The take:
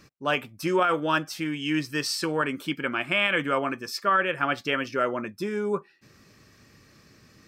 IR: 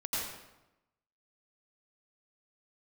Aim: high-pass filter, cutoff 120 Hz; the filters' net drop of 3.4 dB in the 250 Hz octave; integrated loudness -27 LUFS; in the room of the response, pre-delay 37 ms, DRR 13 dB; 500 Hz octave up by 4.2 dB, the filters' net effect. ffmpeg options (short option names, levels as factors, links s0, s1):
-filter_complex "[0:a]highpass=120,equalizer=f=250:t=o:g=-8.5,equalizer=f=500:t=o:g=7.5,asplit=2[s0][s1];[1:a]atrim=start_sample=2205,adelay=37[s2];[s1][s2]afir=irnorm=-1:irlink=0,volume=0.126[s3];[s0][s3]amix=inputs=2:normalize=0,volume=0.794"